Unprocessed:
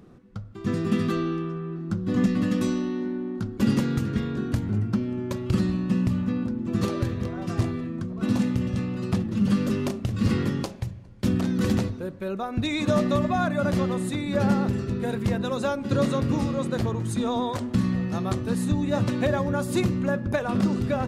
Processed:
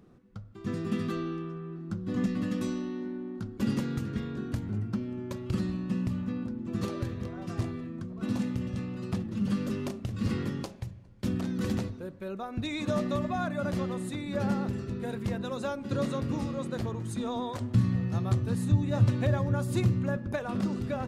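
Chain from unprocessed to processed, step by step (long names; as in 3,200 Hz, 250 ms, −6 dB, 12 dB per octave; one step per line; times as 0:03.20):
0:17.60–0:20.17: parametric band 110 Hz +14 dB 0.54 octaves
level −7 dB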